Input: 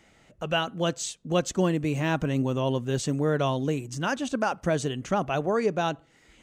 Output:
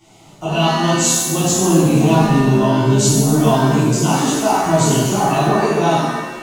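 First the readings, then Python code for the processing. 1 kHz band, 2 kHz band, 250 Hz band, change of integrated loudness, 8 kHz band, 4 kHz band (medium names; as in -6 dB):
+13.5 dB, +8.5 dB, +13.5 dB, +12.5 dB, +19.5 dB, +12.0 dB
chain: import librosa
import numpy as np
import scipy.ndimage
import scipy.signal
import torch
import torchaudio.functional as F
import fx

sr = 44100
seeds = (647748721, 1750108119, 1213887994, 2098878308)

p1 = fx.dynamic_eq(x, sr, hz=7000.0, q=5.1, threshold_db=-53.0, ratio=4.0, max_db=6)
p2 = fx.over_compress(p1, sr, threshold_db=-30.0, ratio=-1.0)
p3 = p1 + F.gain(torch.from_numpy(p2), -3.0).numpy()
p4 = fx.fixed_phaser(p3, sr, hz=340.0, stages=8)
p5 = fx.rev_shimmer(p4, sr, seeds[0], rt60_s=1.2, semitones=7, shimmer_db=-8, drr_db=-12.0)
y = F.gain(torch.from_numpy(p5), -1.5).numpy()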